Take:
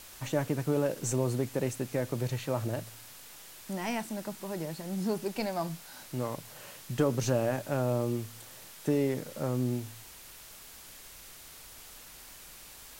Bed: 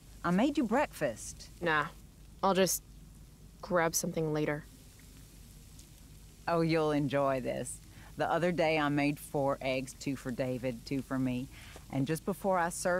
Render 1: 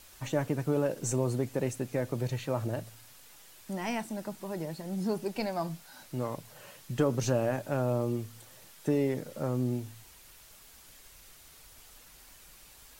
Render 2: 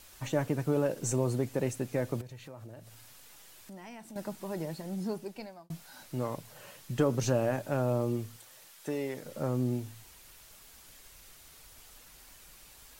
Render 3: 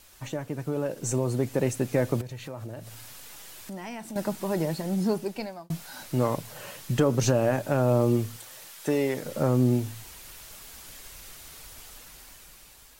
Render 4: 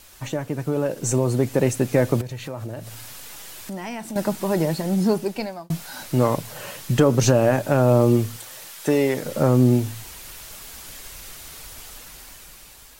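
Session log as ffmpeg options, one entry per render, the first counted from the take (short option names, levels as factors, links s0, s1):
-af "afftdn=nr=6:nf=-50"
-filter_complex "[0:a]asettb=1/sr,asplit=3[s0][s1][s2];[s0]atrim=end=2.214[s3];[s1]atrim=start=2.21:end=4.16,asetpts=PTS-STARTPTS,afade=t=in:d=0.004:c=qsin,afade=t=out:st=1.946:d=0.004:c=qsin,acompressor=threshold=0.00398:ratio=3:attack=3.2:release=140:knee=1:detection=peak[s4];[s2]atrim=start=4.156[s5];[s3][s4]acrossfade=d=0.004:c1=hsin:c2=qsin[s6];[s6][s5]acrossfade=d=0.004:c1=qsin:c2=hsin,asettb=1/sr,asplit=3[s7][s8][s9];[s7]atrim=end=8.364[s10];[s8]atrim=start=8.36:end=9.24,asetpts=PTS-STARTPTS,afade=t=in:d=0.004:c=qsin,afade=t=out:st=0.876:d=0.004:c=qsin,lowshelf=f=400:g=-12[s11];[s9]atrim=start=9.236[s12];[s10][s11]acrossfade=d=0.004:c1=hsin:c2=qsin[s13];[s13][s12]acrossfade=d=0.004:c1=qsin:c2=hsin,asplit=2[s14][s15];[s14]atrim=end=5.7,asetpts=PTS-STARTPTS,afade=t=out:st=4.77:d=0.93[s16];[s15]atrim=start=5.7,asetpts=PTS-STARTPTS,afade=t=in:d=0.004:c=hsin[s17];[s16][s17]concat=n=2:v=0:a=1"
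-af "alimiter=limit=0.0944:level=0:latency=1:release=428,dynaudnorm=f=390:g=7:m=2.82"
-af "volume=2"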